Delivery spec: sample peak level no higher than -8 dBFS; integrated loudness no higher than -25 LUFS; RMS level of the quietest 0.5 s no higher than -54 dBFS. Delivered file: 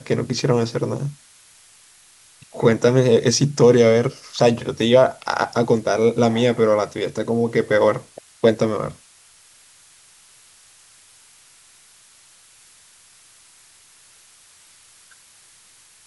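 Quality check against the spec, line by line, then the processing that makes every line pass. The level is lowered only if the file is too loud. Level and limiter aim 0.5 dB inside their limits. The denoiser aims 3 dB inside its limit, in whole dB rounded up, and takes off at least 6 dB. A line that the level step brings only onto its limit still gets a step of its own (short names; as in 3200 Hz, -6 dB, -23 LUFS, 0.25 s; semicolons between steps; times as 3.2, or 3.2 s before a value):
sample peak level -2.5 dBFS: fail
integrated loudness -18.5 LUFS: fail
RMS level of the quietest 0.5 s -51 dBFS: fail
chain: gain -7 dB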